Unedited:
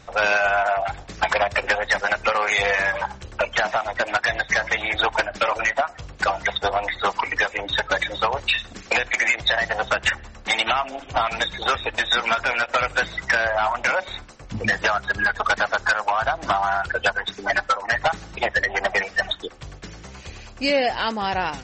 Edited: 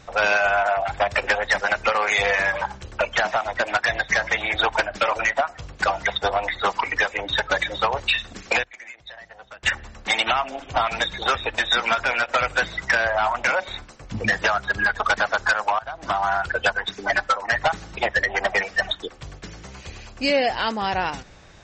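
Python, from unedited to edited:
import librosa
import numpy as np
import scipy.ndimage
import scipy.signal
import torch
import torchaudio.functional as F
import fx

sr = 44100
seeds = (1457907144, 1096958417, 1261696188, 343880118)

y = fx.edit(x, sr, fx.cut(start_s=1.0, length_s=0.4),
    fx.fade_down_up(start_s=8.9, length_s=1.27, db=-20.5, fade_s=0.14, curve='log'),
    fx.fade_in_from(start_s=16.19, length_s=0.47, floor_db=-21.0), tone=tone)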